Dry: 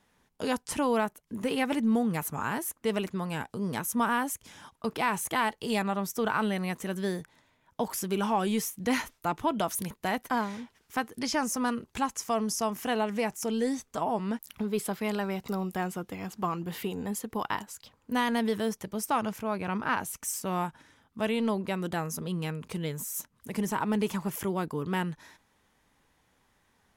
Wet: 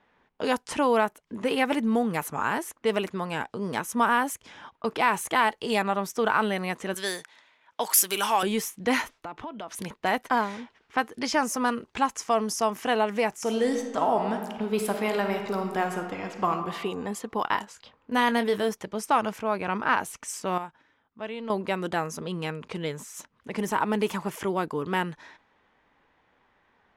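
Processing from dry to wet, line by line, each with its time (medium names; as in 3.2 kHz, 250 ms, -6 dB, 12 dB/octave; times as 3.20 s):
6.94–8.43 s: tilt EQ +4.5 dB/octave
9.19–9.72 s: compression 12:1, threshold -37 dBFS
13.33–16.52 s: reverb throw, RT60 1.4 s, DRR 4.5 dB
17.44–18.69 s: doubling 25 ms -11 dB
20.58–21.50 s: gain -10 dB
whole clip: level-controlled noise filter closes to 2.9 kHz, open at -26 dBFS; tone controls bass -9 dB, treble -5 dB; trim +5.5 dB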